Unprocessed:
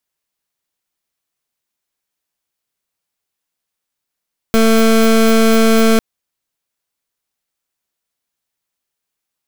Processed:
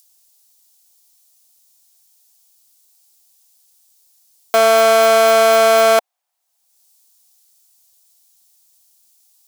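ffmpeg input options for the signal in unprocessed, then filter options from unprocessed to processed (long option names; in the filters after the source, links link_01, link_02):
-f lavfi -i "aevalsrc='0.316*(2*lt(mod(224*t,1),0.24)-1)':duration=1.45:sample_rate=44100"
-filter_complex "[0:a]acrossover=split=4300[link_01][link_02];[link_01]highpass=frequency=740:width_type=q:width=4.9[link_03];[link_02]acompressor=mode=upward:threshold=-36dB:ratio=2.5[link_04];[link_03][link_04]amix=inputs=2:normalize=0"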